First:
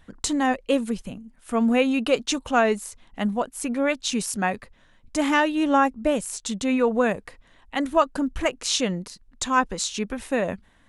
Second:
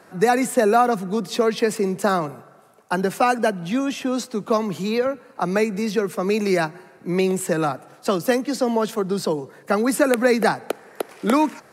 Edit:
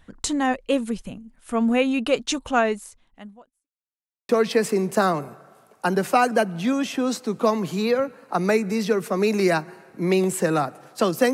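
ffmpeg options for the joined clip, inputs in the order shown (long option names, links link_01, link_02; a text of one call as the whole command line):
ffmpeg -i cue0.wav -i cue1.wav -filter_complex "[0:a]apad=whole_dur=11.33,atrim=end=11.33,asplit=2[link_01][link_02];[link_01]atrim=end=3.68,asetpts=PTS-STARTPTS,afade=type=out:start_time=2.58:duration=1.1:curve=qua[link_03];[link_02]atrim=start=3.68:end=4.29,asetpts=PTS-STARTPTS,volume=0[link_04];[1:a]atrim=start=1.36:end=8.4,asetpts=PTS-STARTPTS,afade=type=in:duration=0.004:curve=hsin[link_05];[link_03][link_04][link_05]concat=n=3:v=0:a=1" out.wav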